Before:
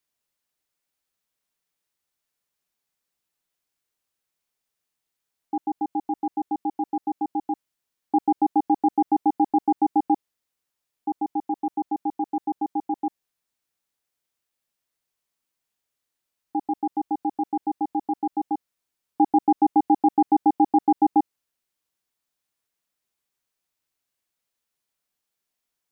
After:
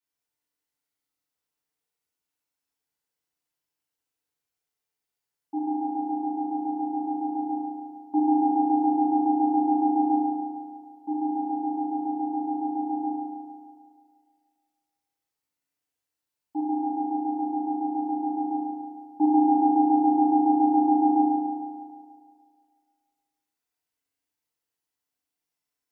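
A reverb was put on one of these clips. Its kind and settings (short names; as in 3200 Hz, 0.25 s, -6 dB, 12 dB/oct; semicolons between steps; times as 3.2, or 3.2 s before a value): FDN reverb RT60 2 s, low-frequency decay 0.85×, high-frequency decay 0.65×, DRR -9 dB; gain -13 dB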